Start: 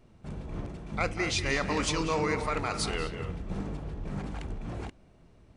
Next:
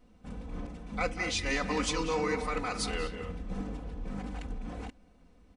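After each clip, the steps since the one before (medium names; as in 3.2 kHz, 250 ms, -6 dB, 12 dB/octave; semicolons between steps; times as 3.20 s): comb 4 ms, depth 89%; trim -4.5 dB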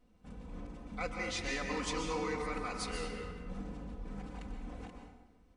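plate-style reverb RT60 1.1 s, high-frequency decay 0.65×, pre-delay 115 ms, DRR 3.5 dB; trim -7 dB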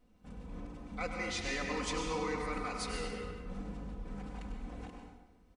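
delay 100 ms -9.5 dB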